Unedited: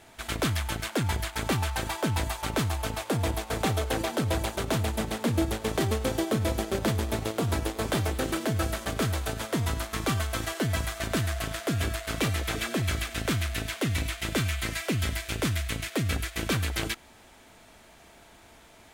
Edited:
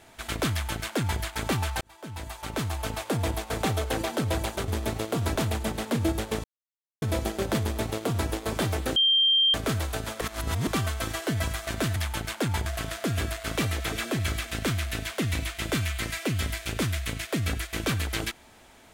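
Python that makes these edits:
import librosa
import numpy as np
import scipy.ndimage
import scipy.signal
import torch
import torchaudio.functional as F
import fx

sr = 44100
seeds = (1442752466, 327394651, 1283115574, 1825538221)

y = fx.edit(x, sr, fx.duplicate(start_s=0.51, length_s=0.7, to_s=11.29),
    fx.fade_in_span(start_s=1.81, length_s=1.09),
    fx.silence(start_s=5.77, length_s=0.58),
    fx.duplicate(start_s=6.94, length_s=0.67, to_s=4.68),
    fx.bleep(start_s=8.29, length_s=0.58, hz=3170.0, db=-18.0),
    fx.reverse_span(start_s=9.54, length_s=0.46), tone=tone)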